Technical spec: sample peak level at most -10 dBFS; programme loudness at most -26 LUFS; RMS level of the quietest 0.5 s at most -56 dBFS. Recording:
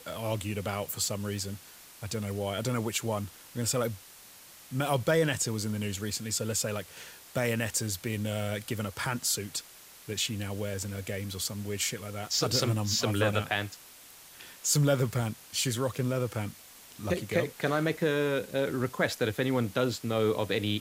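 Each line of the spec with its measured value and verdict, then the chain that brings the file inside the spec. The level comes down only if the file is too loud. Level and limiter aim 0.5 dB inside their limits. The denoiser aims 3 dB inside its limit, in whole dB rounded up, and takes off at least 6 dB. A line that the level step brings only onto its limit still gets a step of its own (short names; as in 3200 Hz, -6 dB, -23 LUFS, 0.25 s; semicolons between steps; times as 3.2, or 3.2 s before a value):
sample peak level -13.0 dBFS: OK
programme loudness -30.5 LUFS: OK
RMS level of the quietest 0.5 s -52 dBFS: fail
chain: denoiser 7 dB, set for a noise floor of -52 dBFS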